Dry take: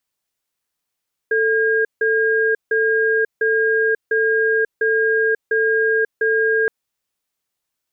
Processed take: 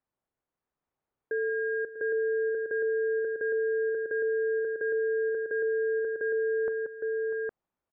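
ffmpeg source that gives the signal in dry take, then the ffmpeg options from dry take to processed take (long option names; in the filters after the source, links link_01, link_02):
-f lavfi -i "aevalsrc='0.141*(sin(2*PI*443*t)+sin(2*PI*1620*t))*clip(min(mod(t,0.7),0.54-mod(t,0.7))/0.005,0,1)':duration=5.37:sample_rate=44100"
-af "lowpass=1100,alimiter=limit=-23.5dB:level=0:latency=1:release=23,aecho=1:1:40|184|645|812:0.106|0.168|0.211|0.708"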